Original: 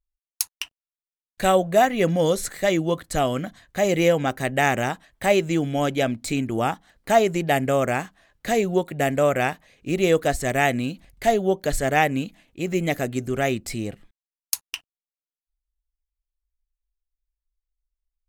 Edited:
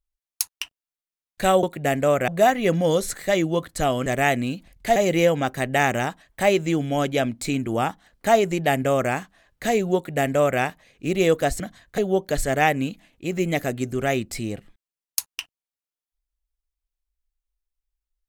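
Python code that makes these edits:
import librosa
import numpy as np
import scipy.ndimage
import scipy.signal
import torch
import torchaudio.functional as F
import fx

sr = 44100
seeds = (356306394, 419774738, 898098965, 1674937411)

y = fx.edit(x, sr, fx.swap(start_s=3.41, length_s=0.38, other_s=10.43, other_length_s=0.9),
    fx.duplicate(start_s=8.78, length_s=0.65, to_s=1.63), tone=tone)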